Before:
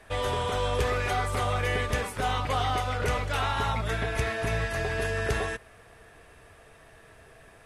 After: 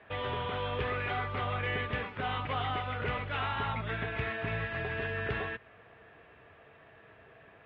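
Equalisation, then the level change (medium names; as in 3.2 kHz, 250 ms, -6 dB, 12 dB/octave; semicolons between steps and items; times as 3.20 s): high-pass 98 Hz 12 dB/octave; steep low-pass 3.3 kHz 36 dB/octave; dynamic bell 590 Hz, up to -5 dB, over -42 dBFS, Q 0.78; -2.5 dB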